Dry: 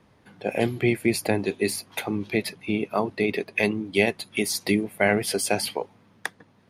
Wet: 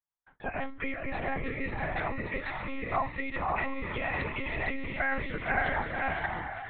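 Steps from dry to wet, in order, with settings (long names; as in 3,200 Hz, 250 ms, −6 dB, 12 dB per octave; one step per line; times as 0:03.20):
feedback delay with all-pass diffusion 554 ms, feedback 42%, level −4 dB
brickwall limiter −16 dBFS, peak gain reduction 11 dB
flat-topped bell 1,200 Hz +14 dB
one-pitch LPC vocoder at 8 kHz 270 Hz
noise reduction from a noise print of the clip's start 9 dB
noise gate −51 dBFS, range −33 dB
level −9 dB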